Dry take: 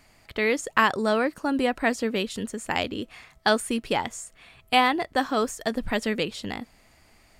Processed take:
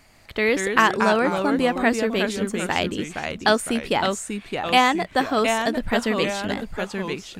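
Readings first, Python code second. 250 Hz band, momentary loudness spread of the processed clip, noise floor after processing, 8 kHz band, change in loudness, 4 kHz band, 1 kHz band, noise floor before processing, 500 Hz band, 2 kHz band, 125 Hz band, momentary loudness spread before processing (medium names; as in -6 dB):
+4.5 dB, 10 LU, -48 dBFS, +4.5 dB, +3.5 dB, +4.0 dB, +4.0 dB, -59 dBFS, +4.5 dB, +4.5 dB, +7.0 dB, 14 LU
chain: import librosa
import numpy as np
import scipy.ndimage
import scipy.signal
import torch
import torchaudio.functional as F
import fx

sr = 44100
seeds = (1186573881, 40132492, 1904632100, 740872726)

y = fx.echo_pitch(x, sr, ms=138, semitones=-2, count=2, db_per_echo=-6.0)
y = y * 10.0 ** (3.0 / 20.0)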